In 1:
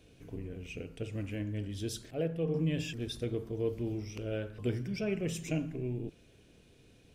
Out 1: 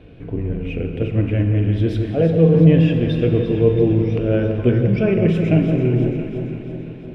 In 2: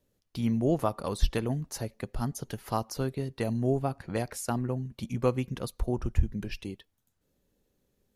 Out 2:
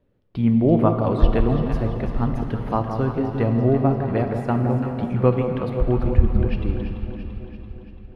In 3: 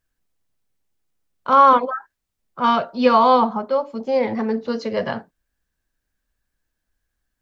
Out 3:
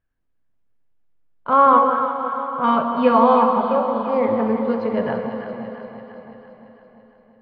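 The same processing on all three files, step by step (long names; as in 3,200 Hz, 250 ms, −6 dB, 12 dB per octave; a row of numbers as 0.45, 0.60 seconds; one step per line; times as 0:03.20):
high-frequency loss of the air 480 metres
delay that swaps between a low-pass and a high-pass 169 ms, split 1,000 Hz, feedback 77%, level −6.5 dB
dense smooth reverb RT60 3.6 s, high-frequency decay 0.95×, DRR 6 dB
normalise the peak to −1.5 dBFS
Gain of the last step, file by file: +17.0, +9.0, +0.5 decibels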